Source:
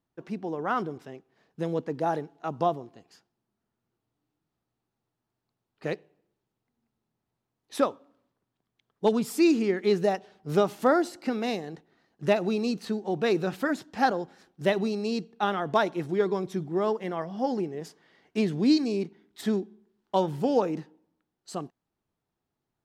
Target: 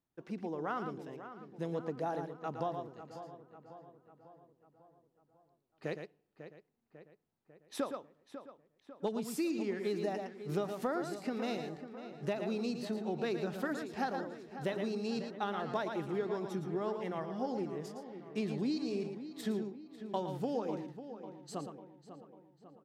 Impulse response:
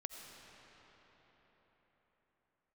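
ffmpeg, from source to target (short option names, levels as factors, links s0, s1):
-filter_complex "[0:a]asplit=2[s0][s1];[s1]aecho=0:1:113:0.355[s2];[s0][s2]amix=inputs=2:normalize=0,acompressor=threshold=0.0562:ratio=6,asplit=2[s3][s4];[s4]adelay=547,lowpass=f=3100:p=1,volume=0.266,asplit=2[s5][s6];[s6]adelay=547,lowpass=f=3100:p=1,volume=0.55,asplit=2[s7][s8];[s8]adelay=547,lowpass=f=3100:p=1,volume=0.55,asplit=2[s9][s10];[s10]adelay=547,lowpass=f=3100:p=1,volume=0.55,asplit=2[s11][s12];[s12]adelay=547,lowpass=f=3100:p=1,volume=0.55,asplit=2[s13][s14];[s14]adelay=547,lowpass=f=3100:p=1,volume=0.55[s15];[s5][s7][s9][s11][s13][s15]amix=inputs=6:normalize=0[s16];[s3][s16]amix=inputs=2:normalize=0,volume=0.473"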